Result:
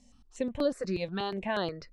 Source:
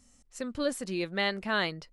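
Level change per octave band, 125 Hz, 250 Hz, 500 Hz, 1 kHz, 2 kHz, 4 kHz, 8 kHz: +1.5, +0.5, +1.5, -1.0, -8.5, -6.0, -9.0 dB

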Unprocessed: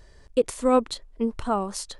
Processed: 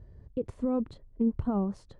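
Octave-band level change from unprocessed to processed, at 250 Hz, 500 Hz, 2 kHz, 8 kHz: -1.0 dB, -11.0 dB, under -15 dB, under -25 dB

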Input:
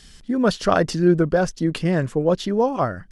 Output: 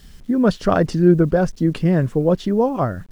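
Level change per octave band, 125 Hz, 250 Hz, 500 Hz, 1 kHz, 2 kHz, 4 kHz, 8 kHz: +5.0 dB, +3.5 dB, +1.5 dB, -0.5 dB, -2.0 dB, -4.5 dB, n/a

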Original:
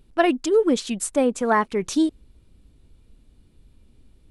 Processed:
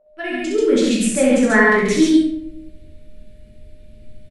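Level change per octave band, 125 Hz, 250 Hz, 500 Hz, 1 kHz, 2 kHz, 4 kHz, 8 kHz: +10.5, +7.5, +4.0, 0.0, +12.0, +6.0, +5.0 dB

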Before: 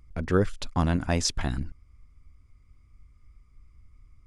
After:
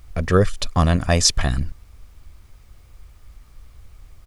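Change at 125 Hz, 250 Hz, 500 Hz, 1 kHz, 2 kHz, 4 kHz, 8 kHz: +8.0, +4.5, +7.5, +7.5, +7.5, +10.5, +11.5 dB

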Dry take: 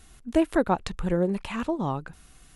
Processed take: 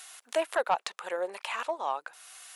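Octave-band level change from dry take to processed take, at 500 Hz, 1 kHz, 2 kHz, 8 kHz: -4.0, 0.0, +1.0, +4.0 dB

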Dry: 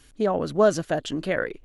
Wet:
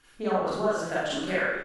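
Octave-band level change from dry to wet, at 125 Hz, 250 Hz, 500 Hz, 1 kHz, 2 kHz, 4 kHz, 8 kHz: -6.0, -4.5, -5.0, -0.5, +2.0, +0.5, -3.5 dB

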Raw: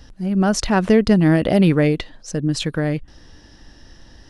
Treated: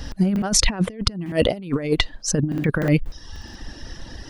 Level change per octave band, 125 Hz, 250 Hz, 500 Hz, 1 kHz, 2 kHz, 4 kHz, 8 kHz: -3.5, -6.0, -5.0, -7.0, -2.0, +4.5, +7.5 dB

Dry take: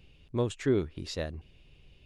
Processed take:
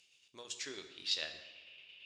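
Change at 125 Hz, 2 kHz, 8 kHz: under -30 dB, -1.5 dB, +2.0 dB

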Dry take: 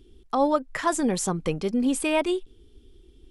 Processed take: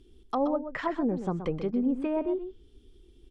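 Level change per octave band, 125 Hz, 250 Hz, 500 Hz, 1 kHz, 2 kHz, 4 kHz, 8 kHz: -3.0 dB, -3.0 dB, -4.5 dB, -7.0 dB, -9.0 dB, under -15 dB, under -30 dB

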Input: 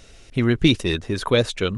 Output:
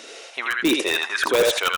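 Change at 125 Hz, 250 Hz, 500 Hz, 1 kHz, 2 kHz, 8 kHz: -23.5, -5.0, +0.5, +6.0, +6.5, +8.5 dB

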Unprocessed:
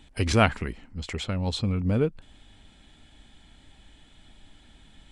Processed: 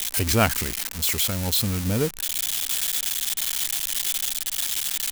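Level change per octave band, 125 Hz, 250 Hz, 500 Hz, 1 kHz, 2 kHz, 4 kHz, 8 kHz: 0.0, 0.0, 0.0, +0.5, +3.5, +11.0, +20.5 dB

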